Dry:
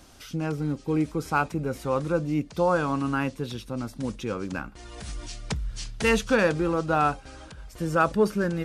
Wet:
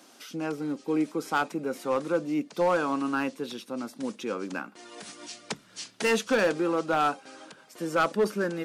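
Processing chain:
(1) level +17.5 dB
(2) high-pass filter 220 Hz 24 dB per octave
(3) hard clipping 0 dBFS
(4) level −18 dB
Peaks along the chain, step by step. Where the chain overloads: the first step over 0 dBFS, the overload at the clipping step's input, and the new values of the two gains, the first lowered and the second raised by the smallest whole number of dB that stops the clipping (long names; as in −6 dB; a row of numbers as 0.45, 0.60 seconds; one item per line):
+8.5, +8.5, 0.0, −18.0 dBFS
step 1, 8.5 dB
step 1 +8.5 dB, step 4 −9 dB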